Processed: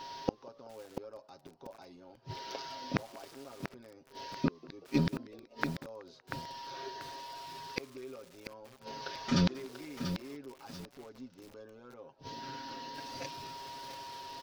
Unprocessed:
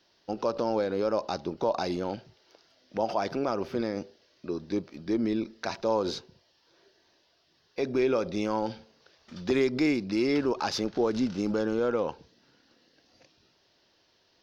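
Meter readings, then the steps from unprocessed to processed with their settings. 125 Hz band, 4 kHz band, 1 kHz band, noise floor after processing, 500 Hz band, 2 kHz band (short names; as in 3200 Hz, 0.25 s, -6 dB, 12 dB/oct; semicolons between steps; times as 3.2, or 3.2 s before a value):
+1.0 dB, -3.5 dB, -7.5 dB, -62 dBFS, -15.5 dB, -5.0 dB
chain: comb 7.4 ms, depth 79%; whine 950 Hz -58 dBFS; flipped gate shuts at -30 dBFS, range -39 dB; frequency-shifting echo 0.188 s, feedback 60%, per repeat +96 Hz, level -23 dB; lo-fi delay 0.688 s, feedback 35%, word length 10-bit, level -8 dB; gain +14.5 dB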